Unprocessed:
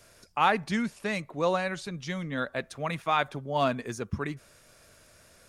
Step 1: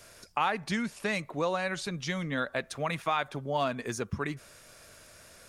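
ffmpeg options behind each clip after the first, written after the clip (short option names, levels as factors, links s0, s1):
-af "acompressor=threshold=0.0282:ratio=3,lowshelf=f=470:g=-3.5,volume=1.68"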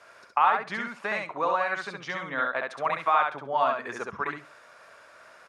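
-filter_complex "[0:a]bandpass=f=1100:t=q:w=1.4:csg=0,asplit=2[s0][s1];[s1]aecho=0:1:67|134|201:0.708|0.113|0.0181[s2];[s0][s2]amix=inputs=2:normalize=0,volume=2.37"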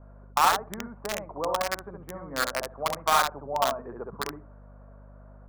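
-filter_complex "[0:a]aeval=exprs='val(0)+0.00398*(sin(2*PI*50*n/s)+sin(2*PI*2*50*n/s)/2+sin(2*PI*3*50*n/s)/3+sin(2*PI*4*50*n/s)/4+sin(2*PI*5*50*n/s)/5)':c=same,acrossover=split=990[s0][s1];[s1]acrusher=bits=3:mix=0:aa=0.000001[s2];[s0][s2]amix=inputs=2:normalize=0"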